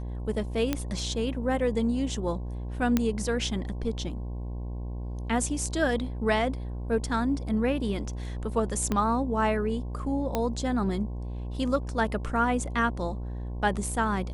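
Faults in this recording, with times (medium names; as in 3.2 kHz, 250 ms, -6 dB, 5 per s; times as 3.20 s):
buzz 60 Hz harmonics 18 -34 dBFS
0.73 s: pop -12 dBFS
2.97 s: pop -10 dBFS
8.92 s: pop -14 dBFS
10.35 s: pop -13 dBFS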